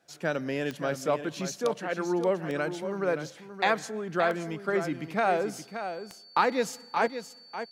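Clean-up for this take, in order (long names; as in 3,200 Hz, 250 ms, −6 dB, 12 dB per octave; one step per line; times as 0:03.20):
click removal
notch filter 4,500 Hz, Q 30
echo removal 574 ms −9.5 dB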